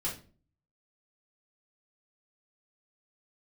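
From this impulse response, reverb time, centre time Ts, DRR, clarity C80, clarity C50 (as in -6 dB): no single decay rate, 25 ms, -6.5 dB, 15.0 dB, 8.5 dB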